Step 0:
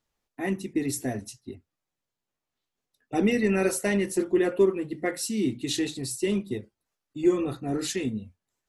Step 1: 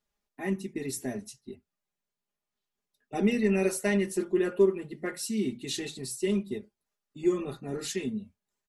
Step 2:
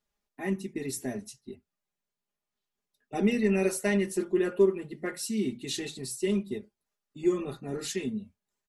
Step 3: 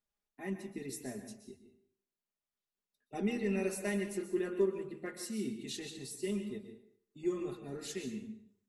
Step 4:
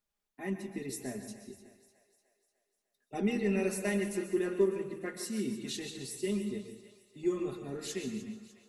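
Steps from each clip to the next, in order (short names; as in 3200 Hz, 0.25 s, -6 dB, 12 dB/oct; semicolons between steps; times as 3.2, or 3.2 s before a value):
comb 4.9 ms, depth 61%; gain -5 dB
nothing audible
plate-style reverb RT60 0.59 s, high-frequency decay 0.9×, pre-delay 0.11 s, DRR 8 dB; gain -8.5 dB
split-band echo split 480 Hz, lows 0.116 s, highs 0.3 s, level -14.5 dB; gain +3 dB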